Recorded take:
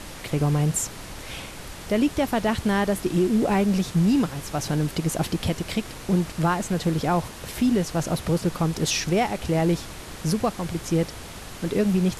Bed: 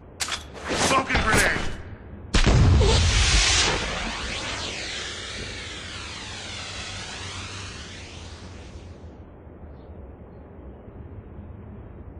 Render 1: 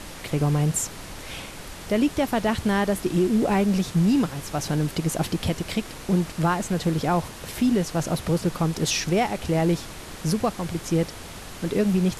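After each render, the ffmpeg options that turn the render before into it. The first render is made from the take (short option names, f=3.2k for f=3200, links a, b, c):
-af "bandreject=f=60:t=h:w=4,bandreject=f=120:t=h:w=4"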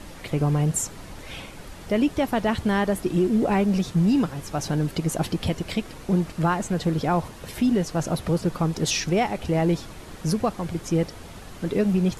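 -af "afftdn=nr=7:nf=-40"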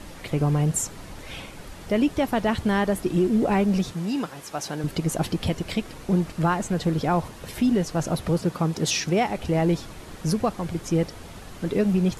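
-filter_complex "[0:a]asettb=1/sr,asplit=3[a][b][c];[a]atrim=end=3.944[d];[b]atrim=start=3.94:end=4.84,asetpts=PTS-STARTPTS,afade=t=in:d=0.004:c=qsin,afade=t=out:st=0.896:d=0.004:c=qsin,highpass=f=490:p=1[e];[c]atrim=start=4.836[f];[d][e]acrossfade=d=0.004:c1=hsin:c2=qsin[g];[g][f]acrossfade=d=0.004:c1=qsin:c2=hsin,asettb=1/sr,asplit=3[h][i][j];[h]atrim=end=8.414[k];[i]atrim=start=8.41:end=9.3,asetpts=PTS-STARTPTS,afade=t=in:d=0.004:c=qsin,afade=t=out:st=0.886:d=0.004:c=qsin,highpass=86[l];[j]atrim=start=9.296[m];[k][l]acrossfade=d=0.004:c1=hsin:c2=qsin[n];[n][m]acrossfade=d=0.004:c1=qsin:c2=hsin"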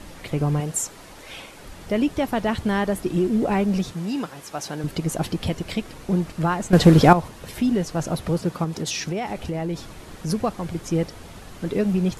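-filter_complex "[0:a]asettb=1/sr,asplit=3[a][b][c];[a]atrim=end=0.604[d];[b]atrim=start=0.6:end=1.62,asetpts=PTS-STARTPTS,afade=t=in:d=0.004:c=qsin,afade=t=out:st=1.016:d=0.004:c=qsin,bass=f=250:g=-9,treble=f=4k:g=1[e];[c]atrim=start=1.616[f];[d][e]acrossfade=d=0.004:c1=hsin:c2=qsin[g];[g][f]acrossfade=d=0.004:c1=qsin:c2=hsin,asettb=1/sr,asplit=3[h][i][j];[h]atrim=end=8.644[k];[i]atrim=start=8.64:end=10.3,asetpts=PTS-STARTPTS,afade=t=in:d=0.004:c=qsin,afade=t=out:st=1.656:d=0.004:c=qsin,acompressor=threshold=-23dB:ratio=6:attack=3.2:release=140:knee=1:detection=peak[l];[j]atrim=start=10.296[m];[k][l]acrossfade=d=0.004:c1=hsin:c2=qsin[n];[n][m]acrossfade=d=0.004:c1=qsin:c2=hsin,asplit=3[o][p][q];[o]atrim=end=6.732[r];[p]atrim=start=6.728:end=7.132,asetpts=PTS-STARTPTS,volume=11.5dB[s];[q]atrim=start=7.128[t];[r][s]acrossfade=d=0.004:c1=hsin:c2=hsin[u];[u][t]acrossfade=d=0.004:c1=hsin:c2=hsin"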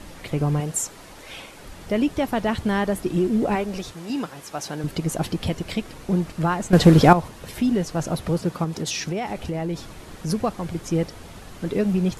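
-filter_complex "[0:a]asettb=1/sr,asplit=3[a][b][c];[a]atrim=end=3.554[d];[b]atrim=start=3.55:end=4.1,asetpts=PTS-STARTPTS,afade=t=in:d=0.004:c=qsin,afade=t=out:st=0.546:d=0.004:c=qsin,equalizer=f=180:t=o:w=0.97:g=-10.5[e];[c]atrim=start=4.096[f];[d][e]acrossfade=d=0.004:c1=hsin:c2=qsin[g];[g][f]acrossfade=d=0.004:c1=qsin:c2=hsin"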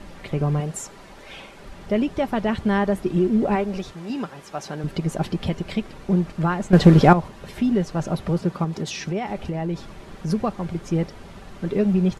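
-af "aemphasis=mode=reproduction:type=50kf,aecho=1:1:5.1:0.31"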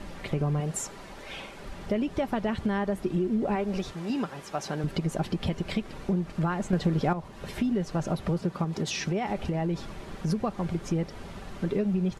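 -af "acompressor=threshold=-25dB:ratio=4"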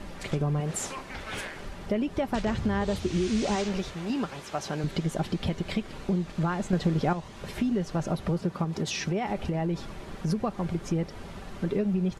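-filter_complex "[1:a]volume=-18.5dB[a];[0:a][a]amix=inputs=2:normalize=0"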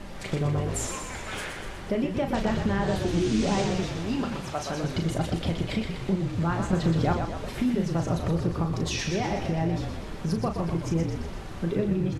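-filter_complex "[0:a]asplit=2[a][b];[b]adelay=36,volume=-7dB[c];[a][c]amix=inputs=2:normalize=0,asplit=9[d][e][f][g][h][i][j][k][l];[e]adelay=122,afreqshift=-45,volume=-6dB[m];[f]adelay=244,afreqshift=-90,volume=-10.6dB[n];[g]adelay=366,afreqshift=-135,volume=-15.2dB[o];[h]adelay=488,afreqshift=-180,volume=-19.7dB[p];[i]adelay=610,afreqshift=-225,volume=-24.3dB[q];[j]adelay=732,afreqshift=-270,volume=-28.9dB[r];[k]adelay=854,afreqshift=-315,volume=-33.5dB[s];[l]adelay=976,afreqshift=-360,volume=-38.1dB[t];[d][m][n][o][p][q][r][s][t]amix=inputs=9:normalize=0"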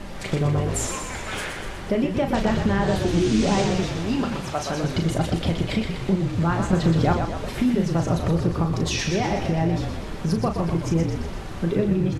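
-af "volume=4.5dB"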